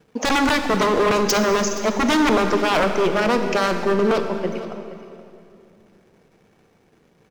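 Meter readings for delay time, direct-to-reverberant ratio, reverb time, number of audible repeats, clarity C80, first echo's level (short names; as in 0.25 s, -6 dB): 0.472 s, 6.0 dB, 2.6 s, 1, 7.0 dB, -16.5 dB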